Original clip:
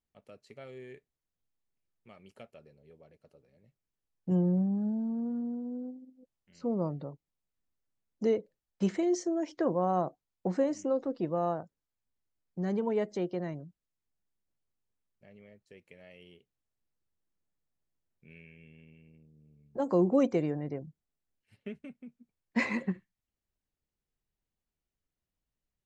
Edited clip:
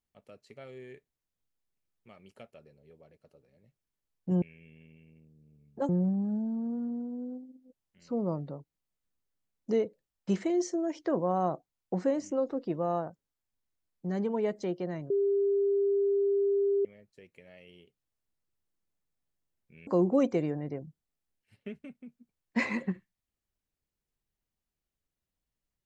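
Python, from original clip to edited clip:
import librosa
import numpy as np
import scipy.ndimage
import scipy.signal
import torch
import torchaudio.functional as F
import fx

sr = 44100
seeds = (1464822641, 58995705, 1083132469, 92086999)

y = fx.edit(x, sr, fx.bleep(start_s=13.63, length_s=1.75, hz=399.0, db=-23.5),
    fx.move(start_s=18.4, length_s=1.47, to_s=4.42), tone=tone)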